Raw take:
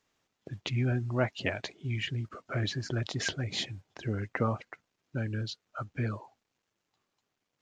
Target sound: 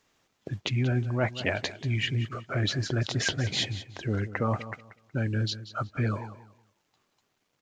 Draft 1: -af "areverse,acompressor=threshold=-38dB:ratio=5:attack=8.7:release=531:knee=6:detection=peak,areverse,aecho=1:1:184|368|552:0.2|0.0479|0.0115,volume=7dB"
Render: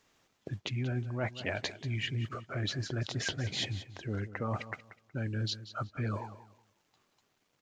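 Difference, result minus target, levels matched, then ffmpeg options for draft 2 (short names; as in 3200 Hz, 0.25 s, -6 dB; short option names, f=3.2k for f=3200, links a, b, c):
compressor: peak gain reduction +7.5 dB
-af "areverse,acompressor=threshold=-28.5dB:ratio=5:attack=8.7:release=531:knee=6:detection=peak,areverse,aecho=1:1:184|368|552:0.2|0.0479|0.0115,volume=7dB"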